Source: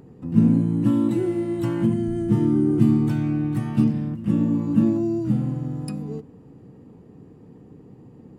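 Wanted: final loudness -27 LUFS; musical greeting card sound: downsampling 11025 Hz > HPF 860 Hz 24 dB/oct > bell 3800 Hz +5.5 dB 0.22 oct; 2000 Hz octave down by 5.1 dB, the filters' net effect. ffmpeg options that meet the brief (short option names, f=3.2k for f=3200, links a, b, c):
-af "equalizer=f=2k:t=o:g=-7,aresample=11025,aresample=44100,highpass=f=860:w=0.5412,highpass=f=860:w=1.3066,equalizer=f=3.8k:t=o:w=0.22:g=5.5,volume=21.5dB"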